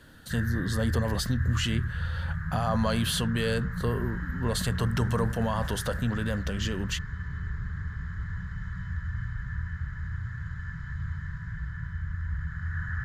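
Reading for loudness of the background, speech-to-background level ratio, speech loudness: -34.5 LUFS, 4.5 dB, -30.0 LUFS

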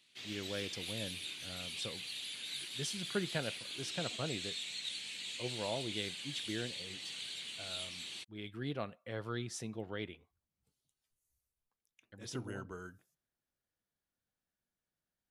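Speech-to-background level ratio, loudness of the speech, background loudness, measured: -1.5 dB, -43.0 LUFS, -41.5 LUFS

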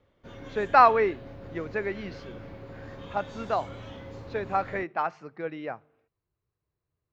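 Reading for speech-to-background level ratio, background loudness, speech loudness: 16.5 dB, -43.5 LUFS, -27.0 LUFS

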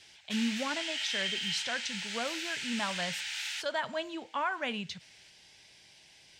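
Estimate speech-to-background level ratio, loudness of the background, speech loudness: -1.0 dB, -35.0 LUFS, -36.0 LUFS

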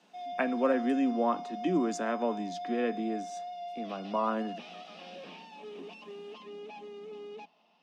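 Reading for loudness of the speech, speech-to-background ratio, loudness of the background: -31.5 LUFS, 10.5 dB, -42.0 LUFS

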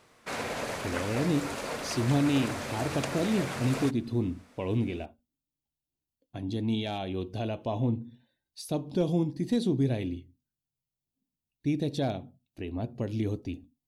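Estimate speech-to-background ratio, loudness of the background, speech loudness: 4.5 dB, -35.5 LUFS, -31.0 LUFS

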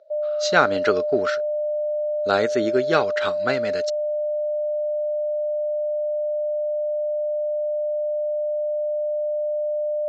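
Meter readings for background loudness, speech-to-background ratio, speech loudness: -25.0 LUFS, 1.5 dB, -23.5 LUFS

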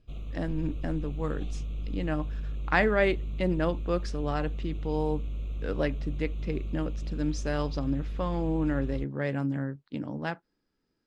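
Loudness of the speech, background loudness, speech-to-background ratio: -31.5 LUFS, -37.0 LUFS, 5.5 dB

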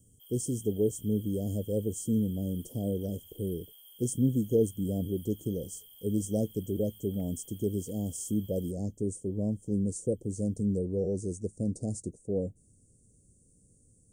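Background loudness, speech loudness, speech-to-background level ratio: -51.5 LUFS, -32.5 LUFS, 19.0 dB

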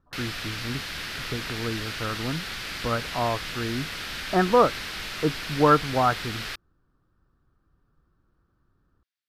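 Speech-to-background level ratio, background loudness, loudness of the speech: 6.0 dB, -32.5 LUFS, -26.5 LUFS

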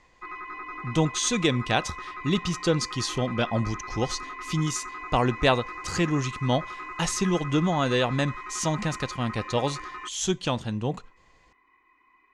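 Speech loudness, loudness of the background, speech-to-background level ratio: -27.0 LUFS, -37.5 LUFS, 10.5 dB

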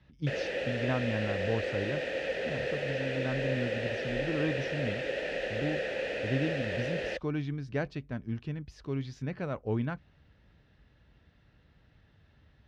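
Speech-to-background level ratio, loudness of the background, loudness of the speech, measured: -2.0 dB, -34.0 LUFS, -36.0 LUFS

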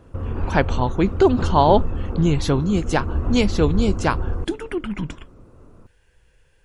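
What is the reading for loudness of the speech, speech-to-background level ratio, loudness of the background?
-21.5 LUFS, 6.0 dB, -27.5 LUFS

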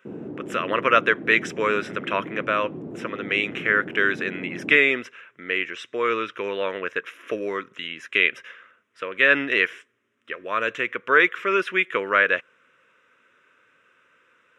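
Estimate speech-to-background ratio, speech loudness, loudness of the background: 14.0 dB, -22.5 LUFS, -36.5 LUFS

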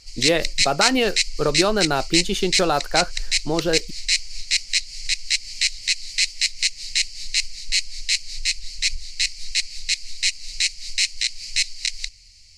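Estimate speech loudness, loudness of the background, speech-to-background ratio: -22.5 LUFS, -22.5 LUFS, 0.0 dB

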